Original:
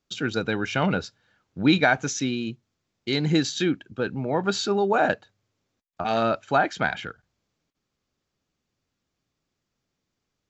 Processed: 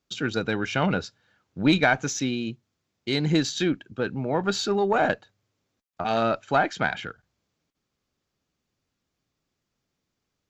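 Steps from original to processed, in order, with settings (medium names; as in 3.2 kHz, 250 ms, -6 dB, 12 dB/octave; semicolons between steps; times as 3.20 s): single-diode clipper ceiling -10.5 dBFS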